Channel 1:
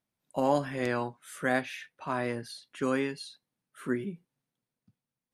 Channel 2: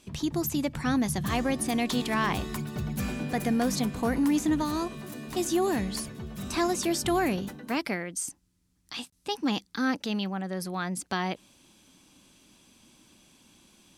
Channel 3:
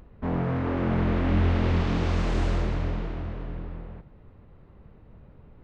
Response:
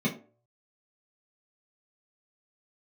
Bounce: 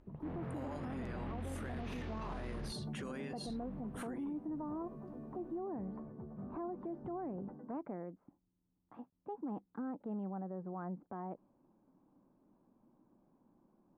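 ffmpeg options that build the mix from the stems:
-filter_complex "[0:a]acompressor=threshold=0.0141:ratio=6,adelay=200,volume=1.06[s0];[1:a]lowpass=f=1000:w=0.5412,lowpass=f=1000:w=1.3066,volume=0.473[s1];[2:a]lowpass=5600,volume=0.168,asplit=3[s2][s3][s4];[s2]atrim=end=2.73,asetpts=PTS-STARTPTS,afade=t=out:st=2.726:d=0.004:c=hsin[s5];[s3]atrim=start=2.73:end=3.46,asetpts=PTS-STARTPTS,volume=0[s6];[s4]atrim=start=3.46,asetpts=PTS-STARTPTS,afade=t=in:d=0.004:c=hsin[s7];[s5][s6][s7]concat=n=3:v=0:a=1[s8];[s0][s1]amix=inputs=2:normalize=0,equalizer=f=63:w=1.1:g=-13,acompressor=threshold=0.0158:ratio=6,volume=1[s9];[s8][s9]amix=inputs=2:normalize=0,alimiter=level_in=3.35:limit=0.0631:level=0:latency=1:release=17,volume=0.299"

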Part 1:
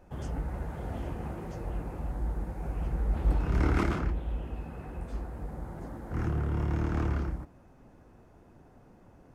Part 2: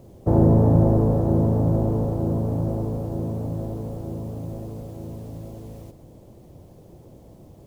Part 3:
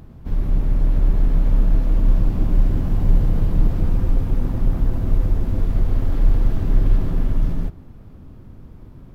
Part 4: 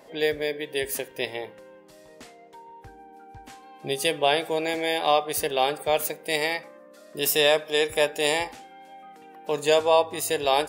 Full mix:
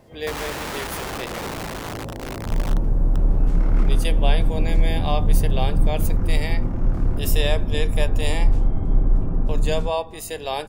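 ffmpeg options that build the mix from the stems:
-filter_complex "[0:a]volume=0.473[s0];[1:a]aeval=exprs='(mod(7.5*val(0)+1,2)-1)/7.5':c=same,volume=0.398[s1];[2:a]lowpass=f=1300:w=0.5412,lowpass=f=1300:w=1.3066,bandreject=f=50:t=h:w=6,bandreject=f=100:t=h:w=6,adelay=2200,volume=0.841[s2];[3:a]volume=0.562[s3];[s0][s1][s2][s3]amix=inputs=4:normalize=0"

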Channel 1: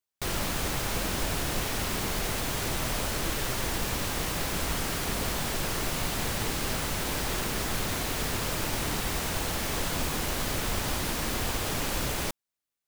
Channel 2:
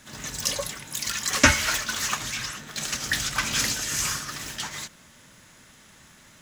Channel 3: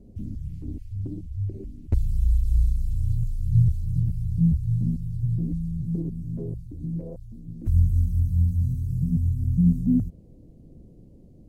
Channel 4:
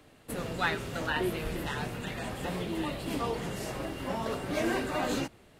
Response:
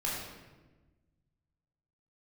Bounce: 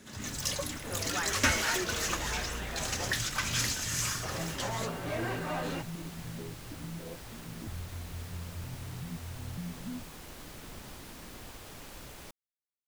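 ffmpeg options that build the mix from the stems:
-filter_complex "[0:a]volume=0.141[s0];[1:a]asoftclip=type=tanh:threshold=0.211,volume=0.531[s1];[2:a]highpass=f=220:p=1,acompressor=threshold=0.0126:ratio=6,volume=0.891[s2];[3:a]asplit=2[s3][s4];[s4]highpass=f=720:p=1,volume=7.94,asoftclip=type=tanh:threshold=0.2[s5];[s3][s5]amix=inputs=2:normalize=0,lowpass=f=1800:p=1,volume=0.501,adelay=550,volume=0.316,asplit=3[s6][s7][s8];[s6]atrim=end=3.13,asetpts=PTS-STARTPTS,afade=t=out:st=3.126:d=0.004:c=hsin[s9];[s7]atrim=start=3.13:end=4.23,asetpts=PTS-STARTPTS,volume=0[s10];[s8]atrim=start=4.23,asetpts=PTS-STARTPTS,afade=t=in:d=0.004:c=hsin[s11];[s9][s10][s11]concat=n=3:v=0:a=1[s12];[s0][s1][s2][s12]amix=inputs=4:normalize=0"

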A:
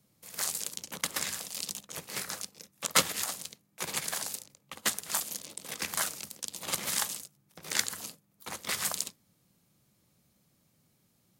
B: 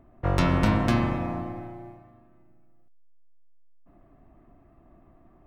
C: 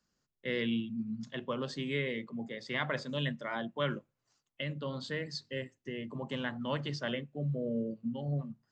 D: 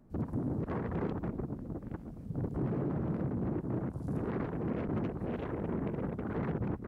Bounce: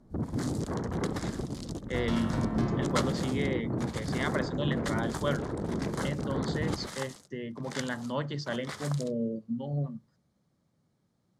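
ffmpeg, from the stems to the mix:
-filter_complex "[0:a]aemphasis=mode=reproduction:type=75fm,volume=0.794[s0];[1:a]adelay=1700,volume=0.282[s1];[2:a]adelay=1450,volume=1.33[s2];[3:a]volume=1.33[s3];[s0][s1][s2][s3]amix=inputs=4:normalize=0,lowpass=11000,equalizer=f=2600:t=o:w=0.48:g=-9.5"

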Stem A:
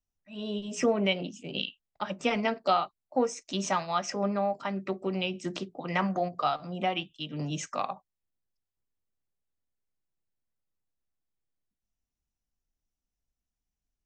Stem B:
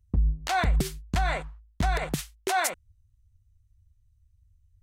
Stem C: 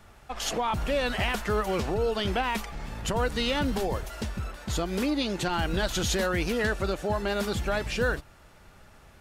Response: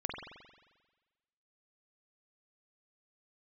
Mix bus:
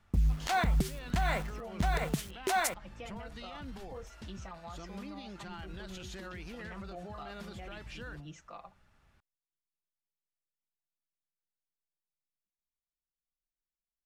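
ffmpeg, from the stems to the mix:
-filter_complex "[0:a]aecho=1:1:5.9:0.64,adelay=750,volume=0.15[s0];[1:a]acrusher=bits=7:mix=0:aa=0.000001,adynamicequalizer=threshold=0.00708:dfrequency=190:dqfactor=1.2:tfrequency=190:tqfactor=1.2:attack=5:release=100:ratio=0.375:range=3:mode=boostabove:tftype=bell,volume=0.891[s1];[2:a]equalizer=f=490:t=o:w=1.5:g=-7,volume=0.237[s2];[s0][s2]amix=inputs=2:normalize=0,highshelf=f=6200:g=-9.5,alimiter=level_in=3.76:limit=0.0631:level=0:latency=1:release=44,volume=0.266,volume=1[s3];[s1][s3]amix=inputs=2:normalize=0,alimiter=limit=0.106:level=0:latency=1:release=316"

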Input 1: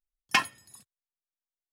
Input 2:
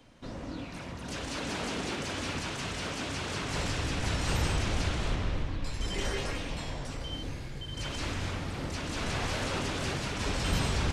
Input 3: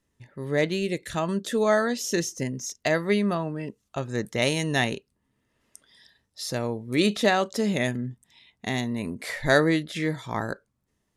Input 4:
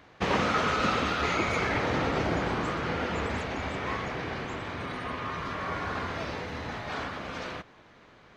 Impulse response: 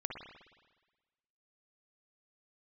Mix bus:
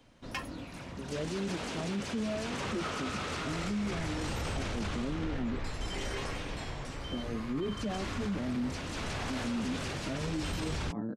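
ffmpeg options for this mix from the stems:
-filter_complex "[0:a]volume=0.237[s0];[1:a]volume=0.668[s1];[2:a]acontrast=71,bandpass=f=240:t=q:w=2.5:csg=0,asplit=2[s2][s3];[s3]adelay=6.2,afreqshift=1.9[s4];[s2][s4]amix=inputs=2:normalize=1,adelay=600,volume=0.708[s5];[3:a]adelay=2300,volume=0.266[s6];[s0][s1][s5][s6]amix=inputs=4:normalize=0,alimiter=level_in=1.33:limit=0.0631:level=0:latency=1:release=14,volume=0.75"

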